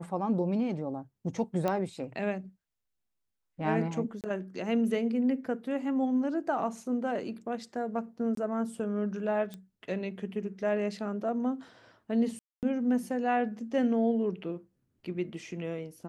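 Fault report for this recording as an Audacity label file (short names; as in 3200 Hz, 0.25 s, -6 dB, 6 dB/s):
1.680000	1.680000	pop -17 dBFS
4.210000	4.240000	gap 28 ms
8.350000	8.370000	gap 23 ms
9.540000	9.540000	pop -27 dBFS
12.390000	12.630000	gap 0.238 s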